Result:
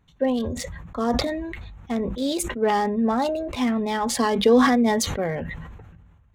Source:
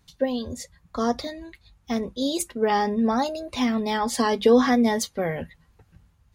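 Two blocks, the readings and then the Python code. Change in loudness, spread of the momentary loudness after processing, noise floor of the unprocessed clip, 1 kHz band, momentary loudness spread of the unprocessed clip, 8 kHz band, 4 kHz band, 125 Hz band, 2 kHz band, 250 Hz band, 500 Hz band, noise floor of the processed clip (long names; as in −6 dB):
+1.0 dB, 15 LU, −63 dBFS, +1.0 dB, 17 LU, +2.0 dB, +1.5 dB, +4.5 dB, +2.0 dB, +1.5 dB, +1.0 dB, −56 dBFS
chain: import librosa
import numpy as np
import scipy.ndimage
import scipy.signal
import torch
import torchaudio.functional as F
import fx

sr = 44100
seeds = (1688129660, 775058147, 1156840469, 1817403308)

y = fx.wiener(x, sr, points=9)
y = fx.sustainer(y, sr, db_per_s=33.0)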